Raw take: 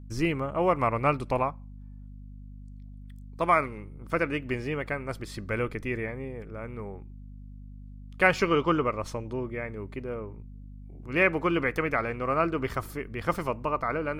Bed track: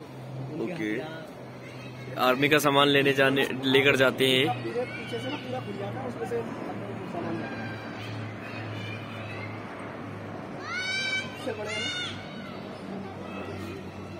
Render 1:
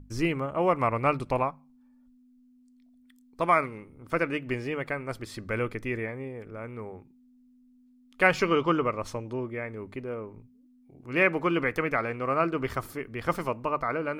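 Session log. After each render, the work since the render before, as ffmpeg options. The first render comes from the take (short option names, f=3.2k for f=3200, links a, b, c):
-af "bandreject=f=50:t=h:w=6,bandreject=f=100:t=h:w=6,bandreject=f=150:t=h:w=6,bandreject=f=200:t=h:w=6"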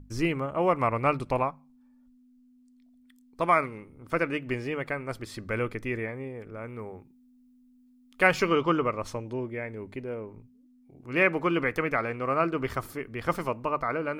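-filter_complex "[0:a]asettb=1/sr,asplit=3[a][b][c];[a]atrim=end=6.664[d];[b]atrim=start=6.66:end=8.52,asetpts=PTS-STARTPTS,afade=t=in:d=0.004:c=qsin,afade=t=out:st=1.856:d=0.004:c=qsin,highshelf=f=9.3k:g=6[e];[c]atrim=start=8.516[f];[d][e]acrossfade=d=0.004:c1=hsin:c2=qsin[g];[g][f]acrossfade=d=0.004:c1=qsin:c2=hsin,asettb=1/sr,asplit=3[h][i][j];[h]atrim=end=9.254[k];[i]atrim=start=9.25:end=10.29,asetpts=PTS-STARTPTS,afade=t=in:d=0.004:c=qsin,afade=t=out:st=1.036:d=0.004:c=qsin,equalizer=f=1.2k:t=o:w=0.22:g=-10[l];[j]atrim=start=10.286[m];[k][l]acrossfade=d=0.004:c1=hsin:c2=qsin[n];[n][m]acrossfade=d=0.004:c1=qsin:c2=hsin"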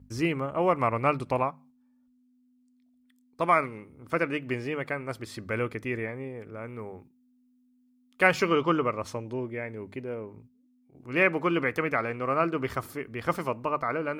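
-af "agate=range=-6dB:threshold=-52dB:ratio=16:detection=peak,highpass=68"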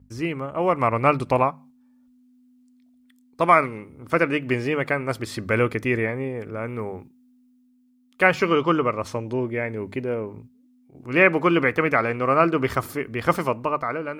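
-filter_complex "[0:a]acrossover=split=3300[a][b];[b]alimiter=level_in=12.5dB:limit=-24dB:level=0:latency=1:release=64,volume=-12.5dB[c];[a][c]amix=inputs=2:normalize=0,dynaudnorm=f=230:g=7:m=9dB"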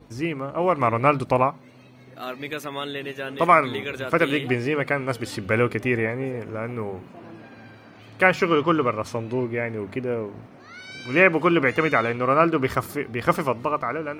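-filter_complex "[1:a]volume=-10dB[a];[0:a][a]amix=inputs=2:normalize=0"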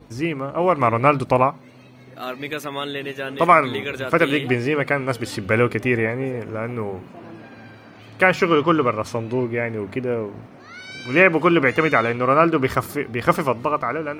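-af "volume=3dB,alimiter=limit=-1dB:level=0:latency=1"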